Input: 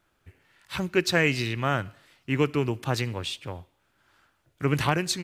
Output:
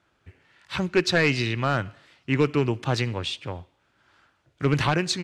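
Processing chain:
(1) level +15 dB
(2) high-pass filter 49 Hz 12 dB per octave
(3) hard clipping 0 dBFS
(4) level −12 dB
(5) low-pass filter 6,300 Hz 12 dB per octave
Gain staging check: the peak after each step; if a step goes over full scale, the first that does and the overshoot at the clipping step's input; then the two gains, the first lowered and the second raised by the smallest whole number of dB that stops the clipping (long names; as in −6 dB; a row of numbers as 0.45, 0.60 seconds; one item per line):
+7.5, +7.5, 0.0, −12.0, −11.5 dBFS
step 1, 7.5 dB
step 1 +7 dB, step 4 −4 dB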